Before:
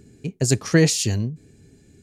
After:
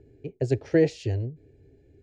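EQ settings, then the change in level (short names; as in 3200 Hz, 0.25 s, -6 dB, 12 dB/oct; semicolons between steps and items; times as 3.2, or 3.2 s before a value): LPF 1600 Hz 12 dB/oct; fixed phaser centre 480 Hz, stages 4; 0.0 dB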